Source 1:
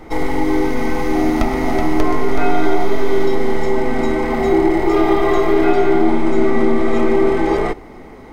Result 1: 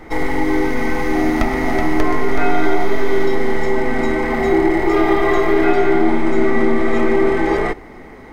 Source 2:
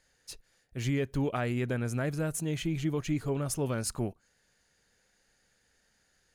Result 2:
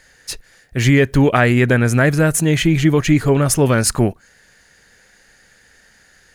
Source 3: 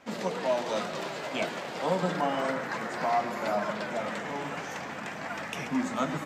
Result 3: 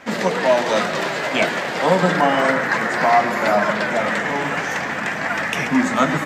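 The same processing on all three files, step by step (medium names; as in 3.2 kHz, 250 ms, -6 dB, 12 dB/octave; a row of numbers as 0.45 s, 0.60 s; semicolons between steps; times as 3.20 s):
peaking EQ 1.8 kHz +6.5 dB 0.61 oct; peak normalisation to -2 dBFS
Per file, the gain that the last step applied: -1.0 dB, +17.0 dB, +11.5 dB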